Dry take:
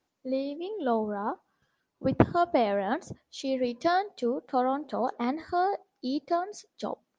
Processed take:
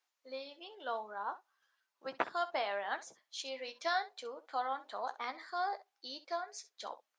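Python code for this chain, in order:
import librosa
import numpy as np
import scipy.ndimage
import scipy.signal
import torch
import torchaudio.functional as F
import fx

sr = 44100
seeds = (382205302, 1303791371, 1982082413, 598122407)

p1 = scipy.signal.sosfilt(scipy.signal.butter(2, 1100.0, 'highpass', fs=sr, output='sos'), x)
p2 = p1 + fx.room_early_taps(p1, sr, ms=(15, 65), db=(-10.0, -16.0), dry=0)
y = p2 * librosa.db_to_amplitude(-2.0)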